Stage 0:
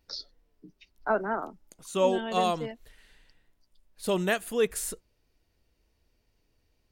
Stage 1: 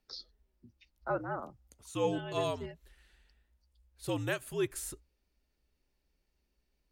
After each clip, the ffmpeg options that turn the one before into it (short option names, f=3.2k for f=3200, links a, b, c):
-af "afreqshift=-68,volume=-7dB"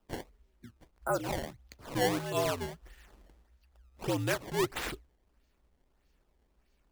-filter_complex "[0:a]asplit=2[a][b];[b]acompressor=threshold=-42dB:ratio=6,volume=2dB[c];[a][c]amix=inputs=2:normalize=0,acrusher=samples=20:mix=1:aa=0.000001:lfo=1:lforange=32:lforate=1.6"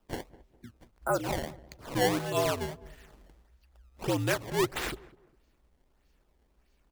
-filter_complex "[0:a]asplit=2[a][b];[b]adelay=203,lowpass=f=1k:p=1,volume=-18dB,asplit=2[c][d];[d]adelay=203,lowpass=f=1k:p=1,volume=0.36,asplit=2[e][f];[f]adelay=203,lowpass=f=1k:p=1,volume=0.36[g];[a][c][e][g]amix=inputs=4:normalize=0,volume=2.5dB"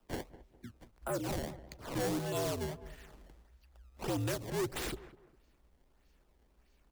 -filter_complex "[0:a]acrossover=split=150|610|3700[a][b][c][d];[c]acompressor=threshold=-41dB:ratio=6[e];[a][b][e][d]amix=inputs=4:normalize=0,asoftclip=type=tanh:threshold=-29.5dB"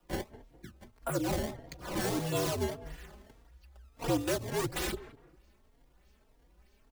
-filter_complex "[0:a]asplit=2[a][b];[b]adelay=3.7,afreqshift=1.7[c];[a][c]amix=inputs=2:normalize=1,volume=7dB"